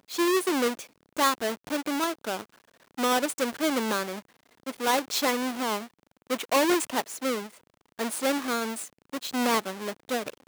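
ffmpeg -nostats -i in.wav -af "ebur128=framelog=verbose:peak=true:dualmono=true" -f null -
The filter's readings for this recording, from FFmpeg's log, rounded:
Integrated loudness:
  I:         -24.9 LUFS
  Threshold: -35.5 LUFS
Loudness range:
  LRA:         2.0 LU
  Threshold: -45.6 LUFS
  LRA low:   -26.7 LUFS
  LRA high:  -24.7 LUFS
True peak:
  Peak:       -9.2 dBFS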